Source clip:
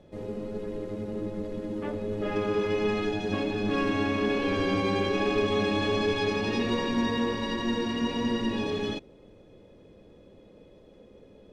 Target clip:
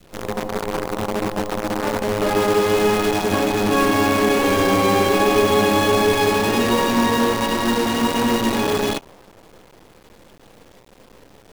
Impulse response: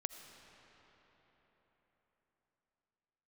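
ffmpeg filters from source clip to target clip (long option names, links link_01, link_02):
-af "acrusher=bits=6:dc=4:mix=0:aa=0.000001,adynamicequalizer=threshold=0.00708:dfrequency=840:dqfactor=0.93:tfrequency=840:tqfactor=0.93:attack=5:release=100:ratio=0.375:range=3.5:mode=boostabove:tftype=bell,volume=7dB"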